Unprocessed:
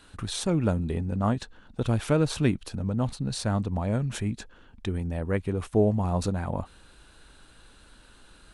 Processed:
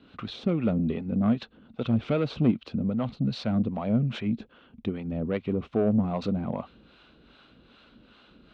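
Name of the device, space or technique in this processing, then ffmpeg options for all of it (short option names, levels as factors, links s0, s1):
guitar amplifier with harmonic tremolo: -filter_complex "[0:a]acrossover=split=520[s0][s1];[s0]aeval=exprs='val(0)*(1-0.7/2+0.7/2*cos(2*PI*2.5*n/s))':c=same[s2];[s1]aeval=exprs='val(0)*(1-0.7/2-0.7/2*cos(2*PI*2.5*n/s))':c=same[s3];[s2][s3]amix=inputs=2:normalize=0,asoftclip=type=tanh:threshold=0.0708,highpass=85,equalizer=f=89:t=q:w=4:g=-10,equalizer=f=230:t=q:w=4:g=7,equalizer=f=900:t=q:w=4:g=-7,equalizer=f=1700:t=q:w=4:g=-9,lowpass=f=3600:w=0.5412,lowpass=f=3600:w=1.3066,volume=1.88"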